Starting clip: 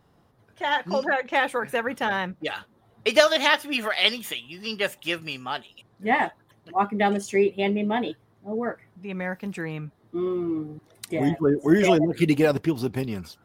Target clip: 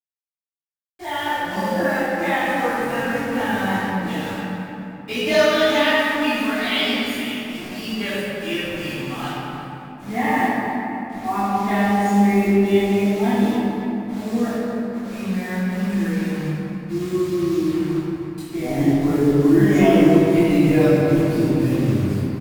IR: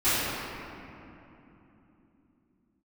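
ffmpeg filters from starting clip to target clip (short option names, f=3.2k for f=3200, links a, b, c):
-filter_complex "[0:a]bass=f=250:g=9,treble=f=4k:g=1,atempo=0.6,acrossover=split=280|700|7700[a][b][c][d];[a]asoftclip=type=tanh:threshold=-21.5dB[e];[e][b][c][d]amix=inputs=4:normalize=0,acrusher=bits=5:mix=0:aa=0.000001,asplit=2[f][g];[g]adelay=21,volume=-10.5dB[h];[f][h]amix=inputs=2:normalize=0,aecho=1:1:272|544|816:0.2|0.0678|0.0231[i];[1:a]atrim=start_sample=2205,asetrate=41454,aresample=44100[j];[i][j]afir=irnorm=-1:irlink=0,volume=-15dB"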